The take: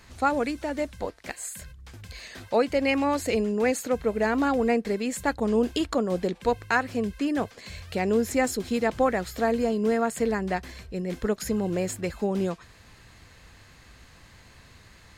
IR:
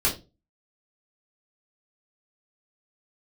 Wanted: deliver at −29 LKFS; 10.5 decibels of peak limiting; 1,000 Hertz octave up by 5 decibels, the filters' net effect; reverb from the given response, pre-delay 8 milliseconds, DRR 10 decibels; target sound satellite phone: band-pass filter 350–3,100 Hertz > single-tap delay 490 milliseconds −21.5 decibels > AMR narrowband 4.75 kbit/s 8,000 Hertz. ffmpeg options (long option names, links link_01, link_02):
-filter_complex "[0:a]equalizer=frequency=1000:width_type=o:gain=7,alimiter=limit=-16dB:level=0:latency=1,asplit=2[link_01][link_02];[1:a]atrim=start_sample=2205,adelay=8[link_03];[link_02][link_03]afir=irnorm=-1:irlink=0,volume=-22dB[link_04];[link_01][link_04]amix=inputs=2:normalize=0,highpass=350,lowpass=3100,aecho=1:1:490:0.0841,volume=1dB" -ar 8000 -c:a libopencore_amrnb -b:a 4750